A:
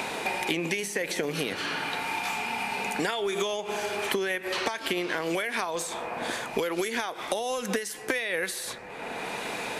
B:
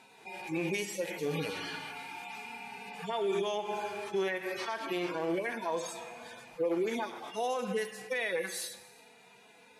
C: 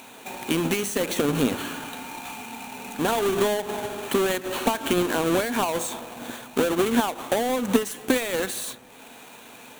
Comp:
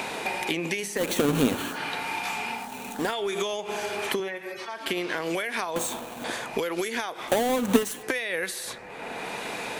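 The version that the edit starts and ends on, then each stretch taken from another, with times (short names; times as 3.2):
A
0.99–1.75 from C, crossfade 0.10 s
2.62–3.03 from C, crossfade 0.24 s
4.2–4.86 from B
5.76–6.24 from C
7.29–8.03 from C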